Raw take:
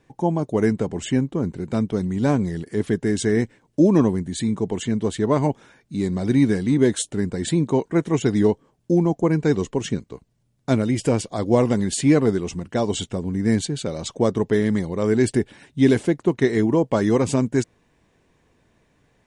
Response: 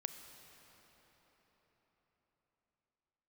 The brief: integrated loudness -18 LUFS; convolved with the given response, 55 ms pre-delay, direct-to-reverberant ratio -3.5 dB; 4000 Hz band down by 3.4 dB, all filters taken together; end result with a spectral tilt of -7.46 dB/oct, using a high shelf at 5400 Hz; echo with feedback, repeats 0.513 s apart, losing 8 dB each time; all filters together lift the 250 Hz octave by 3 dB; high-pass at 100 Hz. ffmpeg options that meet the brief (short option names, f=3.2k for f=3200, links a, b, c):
-filter_complex "[0:a]highpass=100,equalizer=f=250:t=o:g=4,equalizer=f=4k:t=o:g=-3,highshelf=f=5.4k:g=-3,aecho=1:1:513|1026|1539|2052|2565:0.398|0.159|0.0637|0.0255|0.0102,asplit=2[a][b];[1:a]atrim=start_sample=2205,adelay=55[c];[b][c]afir=irnorm=-1:irlink=0,volume=5.5dB[d];[a][d]amix=inputs=2:normalize=0,volume=-4dB"